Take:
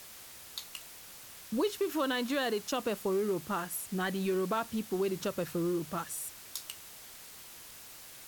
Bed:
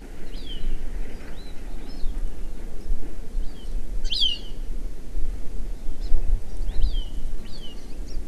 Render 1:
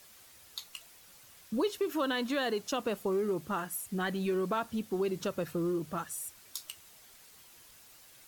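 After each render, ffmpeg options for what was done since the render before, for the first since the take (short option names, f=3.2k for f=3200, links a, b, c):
-af "afftdn=nr=8:nf=-50"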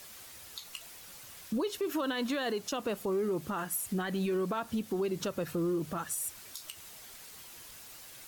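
-filter_complex "[0:a]asplit=2[a][b];[b]acompressor=threshold=-39dB:ratio=6,volume=1.5dB[c];[a][c]amix=inputs=2:normalize=0,alimiter=level_in=1dB:limit=-24dB:level=0:latency=1:release=91,volume=-1dB"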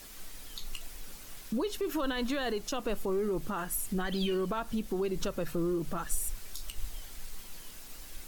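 -filter_complex "[1:a]volume=-18dB[a];[0:a][a]amix=inputs=2:normalize=0"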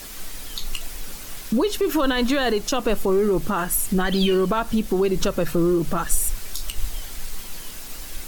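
-af "volume=11.5dB"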